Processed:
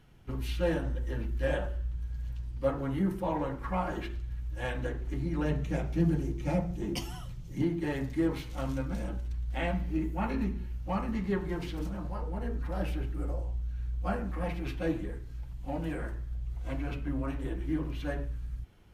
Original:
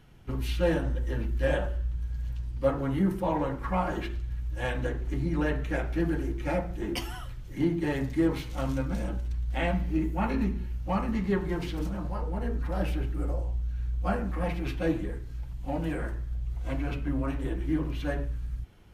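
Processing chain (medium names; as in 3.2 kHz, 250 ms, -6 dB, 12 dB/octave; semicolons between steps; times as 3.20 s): 5.45–7.62 s: fifteen-band graphic EQ 160 Hz +11 dB, 1.6 kHz -7 dB, 6.3 kHz +5 dB; trim -3.5 dB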